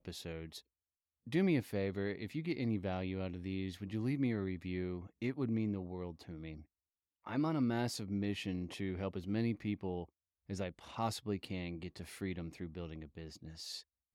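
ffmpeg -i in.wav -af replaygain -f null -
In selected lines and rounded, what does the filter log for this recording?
track_gain = +19.8 dB
track_peak = 0.061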